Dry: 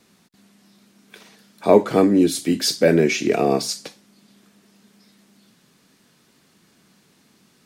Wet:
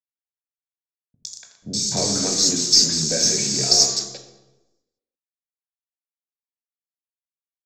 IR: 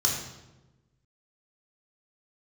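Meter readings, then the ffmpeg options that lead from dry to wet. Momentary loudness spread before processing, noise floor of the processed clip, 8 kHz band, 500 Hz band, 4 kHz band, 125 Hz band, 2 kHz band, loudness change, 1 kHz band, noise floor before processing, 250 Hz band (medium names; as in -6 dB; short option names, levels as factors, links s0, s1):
10 LU, under -85 dBFS, +13.0 dB, -12.5 dB, +10.5 dB, -3.5 dB, -8.5 dB, +1.5 dB, -10.0 dB, -59 dBFS, -10.0 dB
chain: -filter_complex "[0:a]acrossover=split=390|1200[s0][s1][s2];[s0]acompressor=threshold=0.0794:ratio=4[s3];[s1]acompressor=threshold=0.0316:ratio=4[s4];[s2]acompressor=threshold=0.0224:ratio=4[s5];[s3][s4][s5]amix=inputs=3:normalize=0,aresample=16000,acrusher=bits=5:mix=0:aa=0.000001,aresample=44100,aexciter=amount=11.5:drive=3.5:freq=4000,acrossover=split=300|3100[s6][s7][s8];[s8]adelay=110[s9];[s7]adelay=290[s10];[s6][s10][s9]amix=inputs=3:normalize=0,aeval=exprs='0.75*(cos(1*acos(clip(val(0)/0.75,-1,1)))-cos(1*PI/2))+0.015*(cos(6*acos(clip(val(0)/0.75,-1,1)))-cos(6*PI/2))':c=same,asplit=2[s11][s12];[1:a]atrim=start_sample=2205[s13];[s12][s13]afir=irnorm=-1:irlink=0,volume=0.237[s14];[s11][s14]amix=inputs=2:normalize=0,volume=0.75"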